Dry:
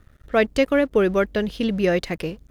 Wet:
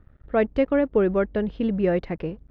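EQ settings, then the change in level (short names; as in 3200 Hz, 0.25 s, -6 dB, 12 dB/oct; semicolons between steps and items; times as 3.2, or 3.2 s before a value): tape spacing loss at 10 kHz 42 dB; bell 870 Hz +3 dB 0.2 oct; 0.0 dB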